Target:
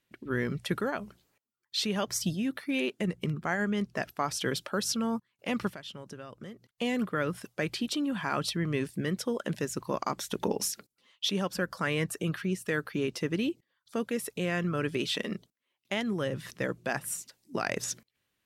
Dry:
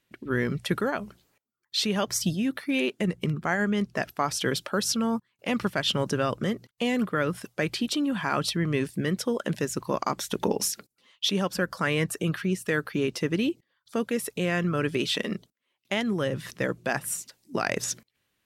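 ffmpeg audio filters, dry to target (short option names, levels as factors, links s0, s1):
-filter_complex "[0:a]asplit=3[s0][s1][s2];[s0]afade=t=out:st=5.74:d=0.02[s3];[s1]acompressor=threshold=0.0158:ratio=12,afade=t=in:st=5.74:d=0.02,afade=t=out:st=6.67:d=0.02[s4];[s2]afade=t=in:st=6.67:d=0.02[s5];[s3][s4][s5]amix=inputs=3:normalize=0,volume=0.631"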